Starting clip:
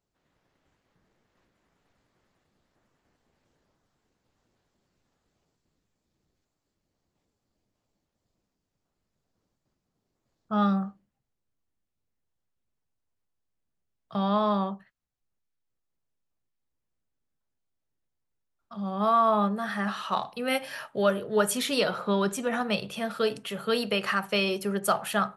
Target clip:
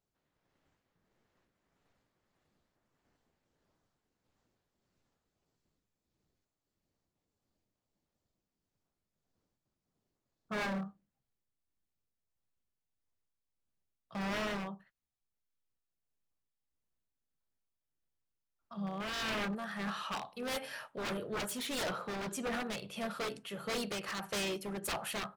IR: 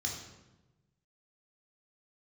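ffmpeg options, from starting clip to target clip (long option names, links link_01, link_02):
-filter_complex "[0:a]asplit=2[link_01][link_02];[link_02]asetrate=37084,aresample=44100,atempo=1.18921,volume=-13dB[link_03];[link_01][link_03]amix=inputs=2:normalize=0,aeval=exprs='0.0562*(abs(mod(val(0)/0.0562+3,4)-2)-1)':channel_layout=same,tremolo=f=1.6:d=0.4,volume=-5dB"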